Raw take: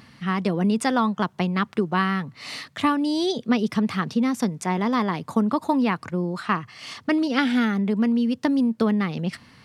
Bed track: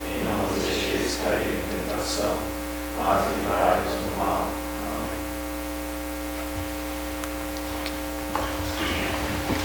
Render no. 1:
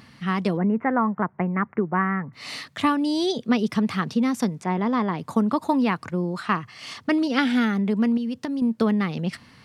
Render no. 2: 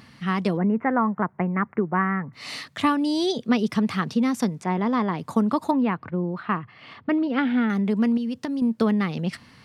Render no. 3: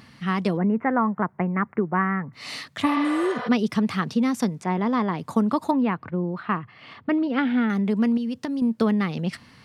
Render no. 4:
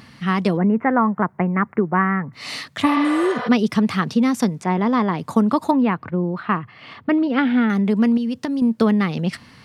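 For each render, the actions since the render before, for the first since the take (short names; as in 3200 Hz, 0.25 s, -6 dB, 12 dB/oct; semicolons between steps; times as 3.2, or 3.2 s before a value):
0.57–2.33 elliptic low-pass 2100 Hz, stop band 50 dB; 4.61–5.19 LPF 1900 Hz 6 dB/oct; 8.17–8.62 compressor 10:1, threshold -24 dBFS
5.71–7.7 air absorption 430 m
2.89–3.45 spectral repair 450–6300 Hz both
gain +4.5 dB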